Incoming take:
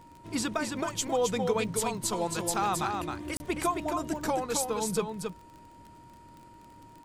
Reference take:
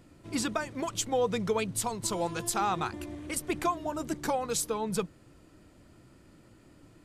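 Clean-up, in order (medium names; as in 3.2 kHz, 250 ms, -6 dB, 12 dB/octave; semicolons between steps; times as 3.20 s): de-click; band-stop 940 Hz, Q 30; interpolate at 3.37 s, 30 ms; inverse comb 267 ms -5 dB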